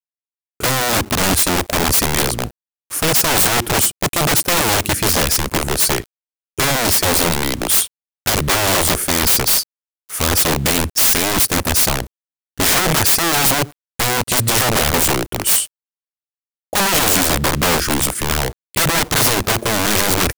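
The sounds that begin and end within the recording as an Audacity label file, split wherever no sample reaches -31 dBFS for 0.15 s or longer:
0.600000	2.510000	sound
2.900000	6.060000	sound
6.580000	7.880000	sound
8.260000	9.630000	sound
10.090000	12.070000	sound
12.580000	13.720000	sound
13.990000	15.670000	sound
16.730000	18.530000	sound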